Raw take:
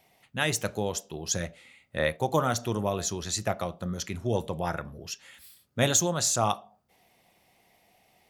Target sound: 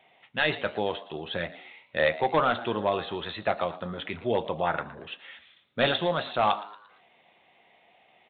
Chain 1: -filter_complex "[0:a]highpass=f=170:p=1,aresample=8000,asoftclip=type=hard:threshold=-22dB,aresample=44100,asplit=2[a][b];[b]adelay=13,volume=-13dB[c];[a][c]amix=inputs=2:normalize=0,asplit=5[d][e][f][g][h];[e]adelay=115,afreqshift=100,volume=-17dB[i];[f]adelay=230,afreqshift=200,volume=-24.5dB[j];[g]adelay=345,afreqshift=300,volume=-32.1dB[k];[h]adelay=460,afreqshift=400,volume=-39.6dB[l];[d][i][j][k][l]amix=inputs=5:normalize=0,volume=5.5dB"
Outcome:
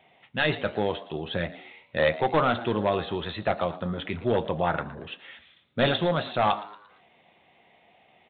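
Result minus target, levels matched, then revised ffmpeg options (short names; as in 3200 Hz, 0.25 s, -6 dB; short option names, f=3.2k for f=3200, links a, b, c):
125 Hz band +5.5 dB
-filter_complex "[0:a]highpass=f=470:p=1,aresample=8000,asoftclip=type=hard:threshold=-22dB,aresample=44100,asplit=2[a][b];[b]adelay=13,volume=-13dB[c];[a][c]amix=inputs=2:normalize=0,asplit=5[d][e][f][g][h];[e]adelay=115,afreqshift=100,volume=-17dB[i];[f]adelay=230,afreqshift=200,volume=-24.5dB[j];[g]adelay=345,afreqshift=300,volume=-32.1dB[k];[h]adelay=460,afreqshift=400,volume=-39.6dB[l];[d][i][j][k][l]amix=inputs=5:normalize=0,volume=5.5dB"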